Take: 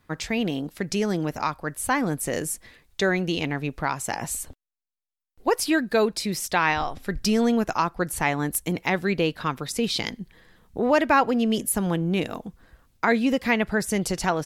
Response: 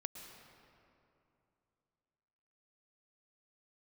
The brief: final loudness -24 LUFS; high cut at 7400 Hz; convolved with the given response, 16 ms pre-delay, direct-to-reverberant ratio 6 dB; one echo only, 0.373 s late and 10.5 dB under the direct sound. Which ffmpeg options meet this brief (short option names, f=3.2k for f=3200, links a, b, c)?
-filter_complex "[0:a]lowpass=7.4k,aecho=1:1:373:0.299,asplit=2[a][b];[1:a]atrim=start_sample=2205,adelay=16[c];[b][c]afir=irnorm=-1:irlink=0,volume=-3.5dB[d];[a][d]amix=inputs=2:normalize=0"